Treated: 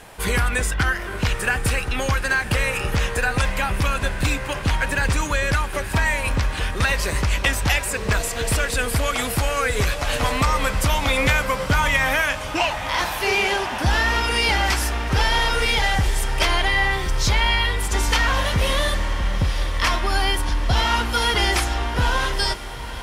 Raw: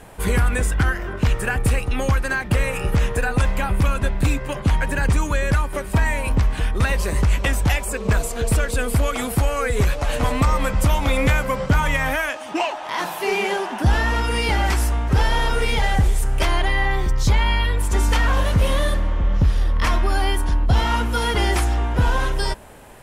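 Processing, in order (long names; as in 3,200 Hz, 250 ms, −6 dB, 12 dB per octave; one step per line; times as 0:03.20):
drawn EQ curve 240 Hz 0 dB, 5,200 Hz +11 dB, 7,900 Hz +6 dB
on a send: feedback delay with all-pass diffusion 918 ms, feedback 68%, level −14 dB
on the sum: level −4 dB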